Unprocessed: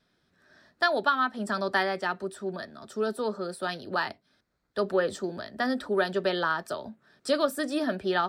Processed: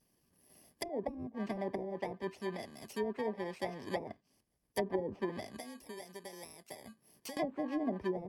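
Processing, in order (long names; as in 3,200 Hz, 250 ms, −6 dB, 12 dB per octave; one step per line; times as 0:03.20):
samples in bit-reversed order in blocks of 32 samples
0:05.59–0:07.37: downward compressor 4 to 1, threshold −43 dBFS, peak gain reduction 19 dB
treble cut that deepens with the level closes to 400 Hz, closed at −22.5 dBFS
harmonic and percussive parts rebalanced harmonic −5 dB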